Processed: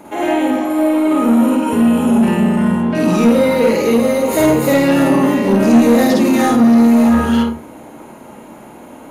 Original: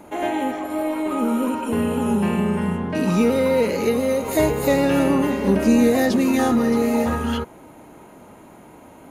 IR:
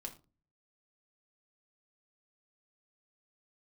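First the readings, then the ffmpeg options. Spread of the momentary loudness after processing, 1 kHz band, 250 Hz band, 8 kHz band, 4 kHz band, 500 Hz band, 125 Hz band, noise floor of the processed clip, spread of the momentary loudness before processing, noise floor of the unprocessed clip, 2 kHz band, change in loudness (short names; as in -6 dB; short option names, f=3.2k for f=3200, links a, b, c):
6 LU, +6.5 dB, +8.5 dB, +5.5 dB, +6.0 dB, +5.5 dB, +5.0 dB, -37 dBFS, 7 LU, -45 dBFS, +6.0 dB, +7.5 dB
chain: -filter_complex "[0:a]asplit=2[a][b];[1:a]atrim=start_sample=2205,adelay=51[c];[b][c]afir=irnorm=-1:irlink=0,volume=4.5dB[d];[a][d]amix=inputs=2:normalize=0,acontrast=81,lowshelf=f=81:g=-10,volume=-2.5dB"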